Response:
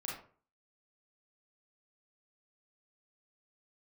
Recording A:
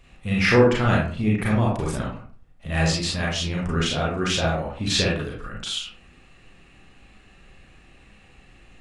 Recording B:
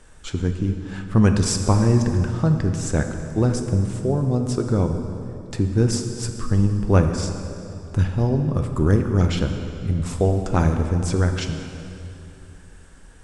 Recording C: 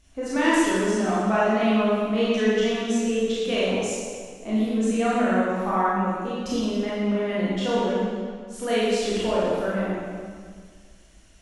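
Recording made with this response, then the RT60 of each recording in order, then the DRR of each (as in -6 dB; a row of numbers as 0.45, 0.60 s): A; 0.45, 2.8, 1.8 s; -4.5, 5.0, -8.5 dB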